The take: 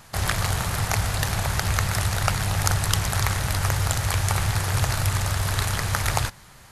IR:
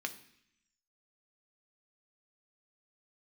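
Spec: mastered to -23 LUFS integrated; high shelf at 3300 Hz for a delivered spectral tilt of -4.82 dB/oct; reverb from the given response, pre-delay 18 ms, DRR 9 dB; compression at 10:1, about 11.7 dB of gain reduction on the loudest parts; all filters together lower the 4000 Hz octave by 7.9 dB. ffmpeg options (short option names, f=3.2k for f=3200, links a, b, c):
-filter_complex "[0:a]highshelf=f=3.3k:g=-5,equalizer=f=4k:t=o:g=-6.5,acompressor=threshold=-31dB:ratio=10,asplit=2[a][b];[1:a]atrim=start_sample=2205,adelay=18[c];[b][c]afir=irnorm=-1:irlink=0,volume=-10.5dB[d];[a][d]amix=inputs=2:normalize=0,volume=13dB"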